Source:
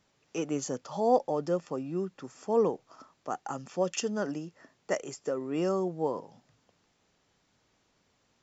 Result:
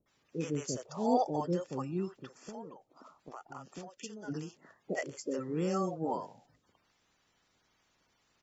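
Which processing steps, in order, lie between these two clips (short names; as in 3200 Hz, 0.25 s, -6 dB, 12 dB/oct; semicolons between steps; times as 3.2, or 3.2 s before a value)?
bin magnitudes rounded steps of 30 dB; 2.17–4.28 compressor 10:1, threshold -40 dBFS, peak gain reduction 19.5 dB; bands offset in time lows, highs 60 ms, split 550 Hz; gain -1 dB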